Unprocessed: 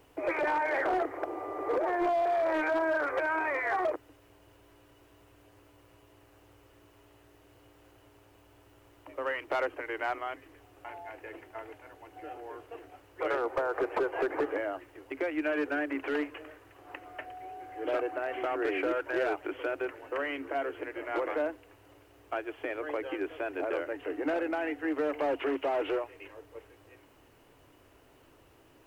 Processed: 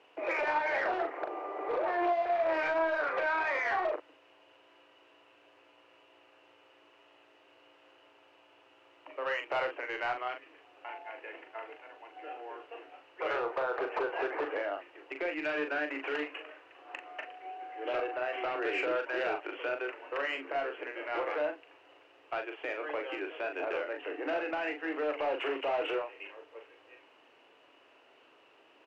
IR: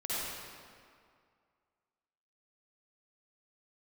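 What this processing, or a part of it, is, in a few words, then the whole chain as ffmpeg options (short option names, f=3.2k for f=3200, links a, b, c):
intercom: -filter_complex "[0:a]highpass=450,lowpass=3.8k,equalizer=f=2.7k:t=o:w=0.32:g=7.5,asoftclip=type=tanh:threshold=-24dB,asplit=2[a][b];[b]adelay=40,volume=-6dB[c];[a][c]amix=inputs=2:normalize=0"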